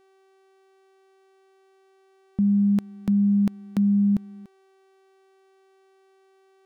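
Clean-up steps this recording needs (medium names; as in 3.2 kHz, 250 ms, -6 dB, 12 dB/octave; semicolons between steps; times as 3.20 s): de-hum 384.6 Hz, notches 29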